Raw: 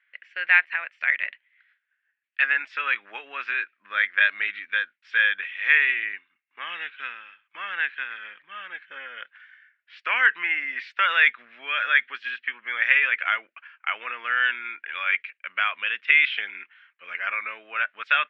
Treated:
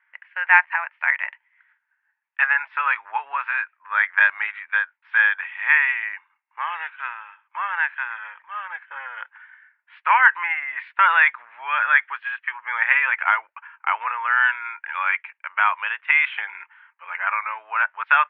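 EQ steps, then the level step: resonant high-pass 910 Hz, resonance Q 9.1; low-pass 2.3 kHz 12 dB/octave; distance through air 230 m; +3.5 dB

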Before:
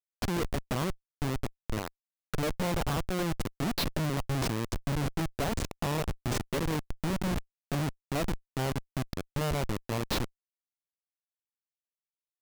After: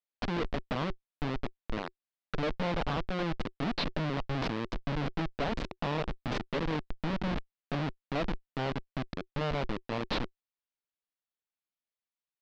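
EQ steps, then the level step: low-pass 4.3 kHz 24 dB/octave; peaking EQ 88 Hz -13 dB 0.82 oct; band-stop 370 Hz, Q 12; 0.0 dB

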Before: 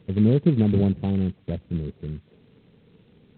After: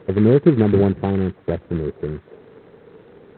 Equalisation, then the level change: dynamic bell 570 Hz, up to -8 dB, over -37 dBFS, Q 0.94; high-order bell 780 Hz +13.5 dB 2.9 oct; +2.5 dB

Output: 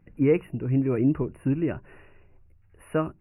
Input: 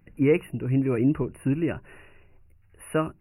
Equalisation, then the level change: treble shelf 2.8 kHz -11.5 dB; 0.0 dB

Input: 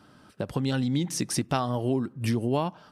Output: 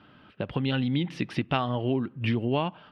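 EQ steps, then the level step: distance through air 410 m; peaking EQ 2.9 kHz +14 dB 1.2 oct; 0.0 dB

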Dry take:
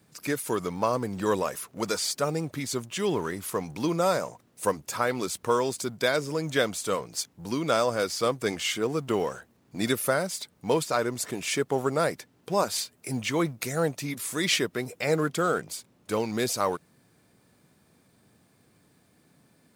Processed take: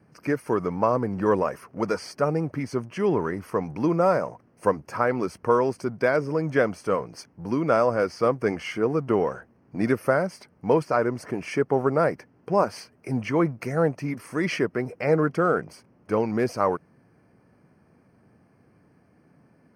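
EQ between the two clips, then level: boxcar filter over 12 samples; +4.5 dB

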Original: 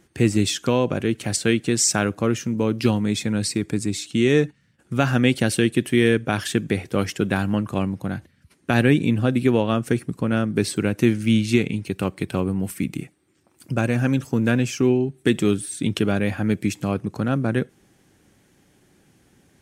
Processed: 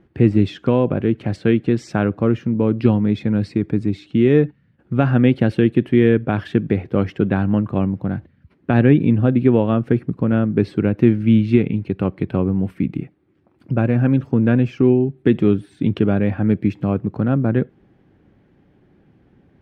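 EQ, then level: distance through air 370 m; tilt shelf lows +3.5 dB; treble shelf 11 kHz +5.5 dB; +2.0 dB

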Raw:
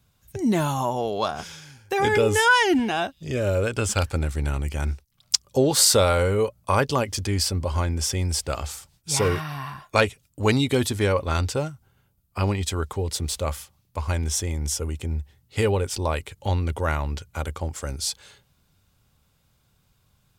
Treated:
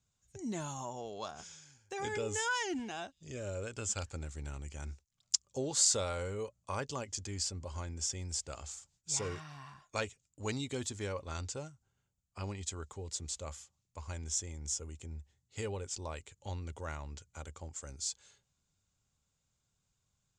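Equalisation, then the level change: four-pole ladder low-pass 7.6 kHz, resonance 70%; -5.5 dB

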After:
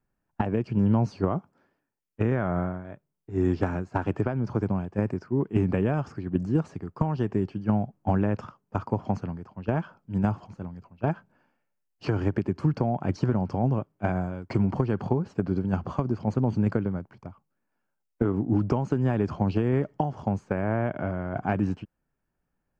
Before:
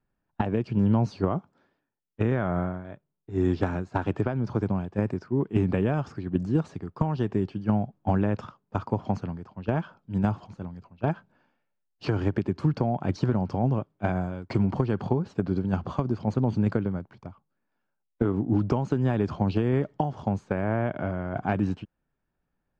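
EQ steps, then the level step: peaking EQ 3.7 kHz -9 dB 0.36 oct; 0.0 dB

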